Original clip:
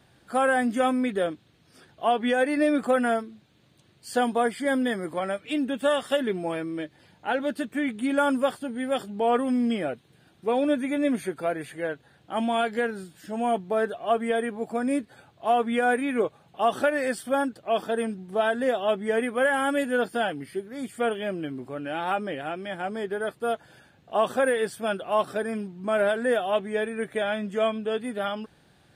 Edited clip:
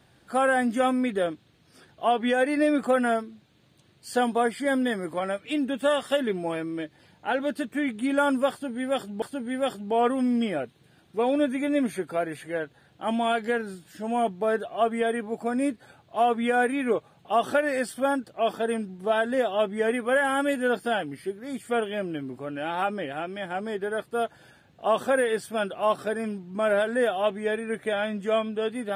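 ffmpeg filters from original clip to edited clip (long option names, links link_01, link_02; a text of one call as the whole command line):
ffmpeg -i in.wav -filter_complex "[0:a]asplit=2[link_01][link_02];[link_01]atrim=end=9.222[link_03];[link_02]atrim=start=8.508[link_04];[link_03][link_04]acrossfade=duration=0.004:curve1=hsin:curve2=hsin" out.wav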